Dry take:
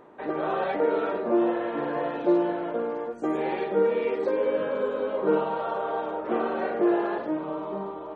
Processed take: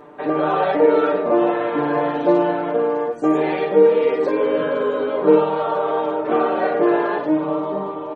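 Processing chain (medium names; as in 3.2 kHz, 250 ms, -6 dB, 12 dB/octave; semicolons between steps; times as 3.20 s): comb 6.8 ms, depth 75%; trim +6.5 dB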